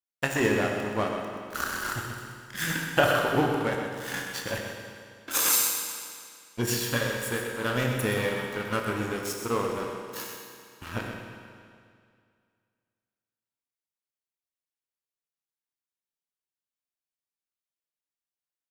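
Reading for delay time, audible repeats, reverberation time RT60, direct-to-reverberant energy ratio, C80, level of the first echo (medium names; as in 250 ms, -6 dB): 127 ms, 1, 2.2 s, 0.5 dB, 2.5 dB, -8.0 dB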